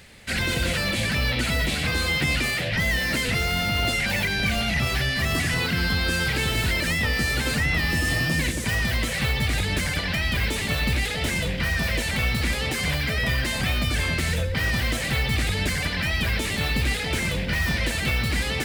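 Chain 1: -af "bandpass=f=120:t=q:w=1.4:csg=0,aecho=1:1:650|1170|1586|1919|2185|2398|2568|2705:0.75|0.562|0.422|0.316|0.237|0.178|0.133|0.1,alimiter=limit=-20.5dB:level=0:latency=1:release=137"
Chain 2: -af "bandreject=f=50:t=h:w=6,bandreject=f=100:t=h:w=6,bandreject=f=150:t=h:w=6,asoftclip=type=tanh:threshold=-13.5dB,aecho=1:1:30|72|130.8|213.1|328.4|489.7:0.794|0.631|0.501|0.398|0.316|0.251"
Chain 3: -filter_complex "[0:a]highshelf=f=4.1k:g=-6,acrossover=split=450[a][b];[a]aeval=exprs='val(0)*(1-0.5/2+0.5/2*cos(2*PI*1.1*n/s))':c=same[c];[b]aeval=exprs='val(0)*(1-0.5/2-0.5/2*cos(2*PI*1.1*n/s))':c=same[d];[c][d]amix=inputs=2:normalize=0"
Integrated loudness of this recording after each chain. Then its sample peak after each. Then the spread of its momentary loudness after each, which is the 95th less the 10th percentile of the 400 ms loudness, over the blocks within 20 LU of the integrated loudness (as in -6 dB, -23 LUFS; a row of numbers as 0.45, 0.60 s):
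-30.5, -20.0, -27.0 LUFS; -20.5, -8.0, -14.5 dBFS; 1, 2, 3 LU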